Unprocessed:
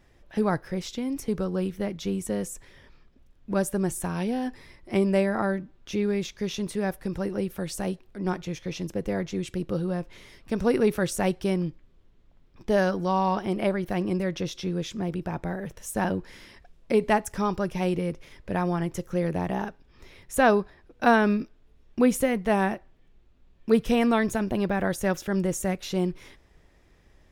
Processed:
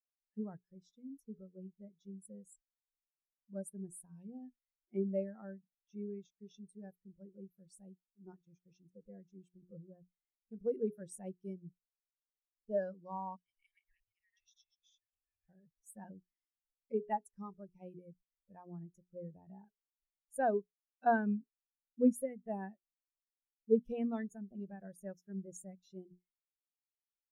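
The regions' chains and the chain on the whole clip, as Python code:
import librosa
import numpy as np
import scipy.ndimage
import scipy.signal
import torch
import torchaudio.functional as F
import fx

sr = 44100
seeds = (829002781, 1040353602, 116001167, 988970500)

y = fx.chain(x, sr, fx.reverse_delay(ms=119, wet_db=-1.0),
    fx.cheby1_bandstop(low_hz=110.0, high_hz=1700.0, order=5),
    fx.peak_eq(hz=320.0, db=-13.0, octaves=2.5), at=(13.36, 15.49))
y = librosa.effects.preemphasis(y, coef=0.8, zi=[0.0])
y = fx.hum_notches(y, sr, base_hz=60, count=7)
y = fx.spectral_expand(y, sr, expansion=2.5)
y = y * 10.0 ** (2.0 / 20.0)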